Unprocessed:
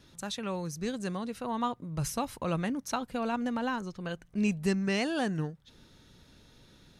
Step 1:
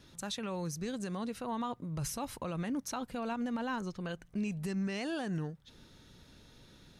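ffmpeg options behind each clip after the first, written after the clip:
-af "alimiter=level_in=1.58:limit=0.0631:level=0:latency=1:release=72,volume=0.631"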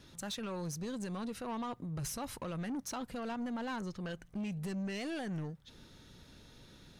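-af "asoftclip=type=tanh:threshold=0.0178,volume=1.12"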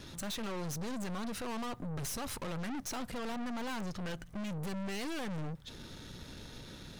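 -af "aeval=exprs='(tanh(251*val(0)+0.45)-tanh(0.45))/251':c=same,volume=3.35"

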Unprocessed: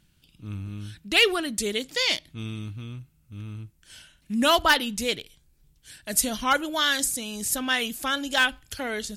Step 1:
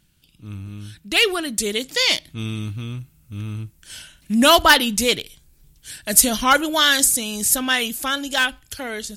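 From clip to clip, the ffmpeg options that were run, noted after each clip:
-filter_complex "[0:a]dynaudnorm=f=440:g=9:m=3.76,highshelf=f=6600:g=5.5,asplit=2[s0][s1];[s1]acontrast=42,volume=0.841[s2];[s0][s2]amix=inputs=2:normalize=0,volume=0.422"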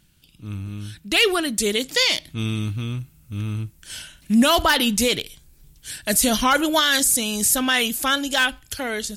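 -af "alimiter=limit=0.266:level=0:latency=1:release=36,volume=1.33"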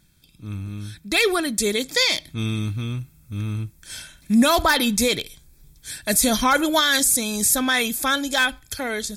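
-af "asuperstop=centerf=2900:order=20:qfactor=7.6"

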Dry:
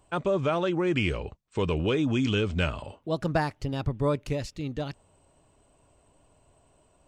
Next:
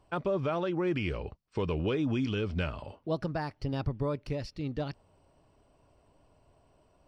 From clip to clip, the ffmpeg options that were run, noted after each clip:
-af "superequalizer=14b=2:15b=0.562,alimiter=limit=0.106:level=0:latency=1:release=344,highshelf=f=4900:g=-11,volume=0.841"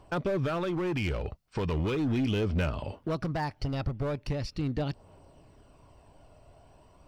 -filter_complex "[0:a]asplit=2[s0][s1];[s1]acompressor=threshold=0.0112:ratio=12,volume=1.26[s2];[s0][s2]amix=inputs=2:normalize=0,asoftclip=type=hard:threshold=0.0531,aphaser=in_gain=1:out_gain=1:delay=1.6:decay=0.28:speed=0.39:type=triangular"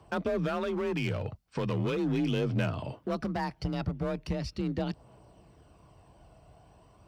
-af "afreqshift=34,volume=0.891"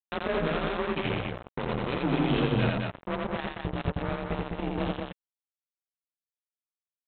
-af "flanger=delay=9.9:depth=9.2:regen=-47:speed=1:shape=sinusoidal,aresample=8000,acrusher=bits=4:mix=0:aa=0.5,aresample=44100,aecho=1:1:84.55|207:0.794|0.631,volume=1.5"

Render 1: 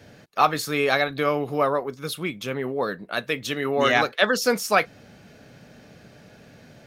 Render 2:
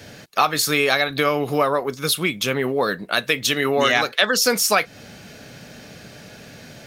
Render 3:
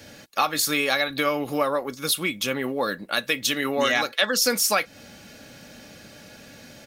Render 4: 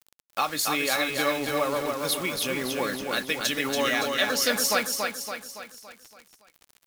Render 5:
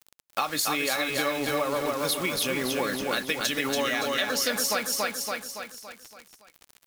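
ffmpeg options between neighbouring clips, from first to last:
-af "highshelf=f=2200:g=8.5,acompressor=threshold=0.0794:ratio=3,volume=2"
-af "highshelf=f=6200:g=4,aecho=1:1:3.6:0.37,volume=0.562"
-filter_complex "[0:a]acrusher=bits=5:mix=0:aa=0.000001,asplit=2[s0][s1];[s1]aecho=0:1:282|564|846|1128|1410|1692:0.631|0.315|0.158|0.0789|0.0394|0.0197[s2];[s0][s2]amix=inputs=2:normalize=0,volume=0.631"
-af "acompressor=threshold=0.0501:ratio=6,volume=1.41"

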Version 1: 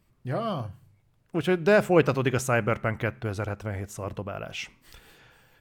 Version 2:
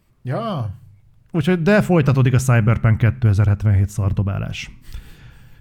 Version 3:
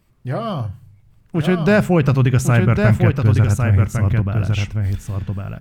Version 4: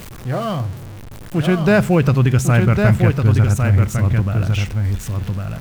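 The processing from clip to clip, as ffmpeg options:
-af "asubboost=boost=7.5:cutoff=190,alimiter=level_in=2.66:limit=0.891:release=50:level=0:latency=1,volume=0.708"
-af "aecho=1:1:1104:0.562"
-af "aeval=exprs='val(0)+0.5*0.0355*sgn(val(0))':c=same"

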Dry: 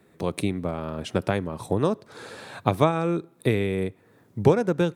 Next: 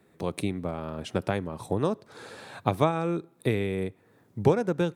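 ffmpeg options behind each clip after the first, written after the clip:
-af "equalizer=f=800:w=6.3:g=2,volume=0.668"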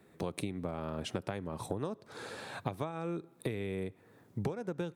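-af "acompressor=threshold=0.0251:ratio=12"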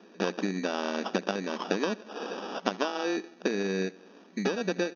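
-af "aecho=1:1:77|154|231|308:0.0841|0.0488|0.0283|0.0164,acrusher=samples=21:mix=1:aa=0.000001,afftfilt=real='re*between(b*sr/4096,180,6600)':imag='im*between(b*sr/4096,180,6600)':win_size=4096:overlap=0.75,volume=2.66"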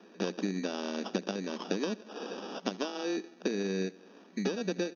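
-filter_complex "[0:a]acrossover=split=500|3000[s0][s1][s2];[s1]acompressor=threshold=0.00251:ratio=1.5[s3];[s0][s3][s2]amix=inputs=3:normalize=0,volume=0.841"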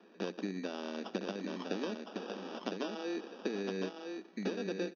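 -af "highpass=170,lowpass=4600,aecho=1:1:1010:0.562,volume=0.596"

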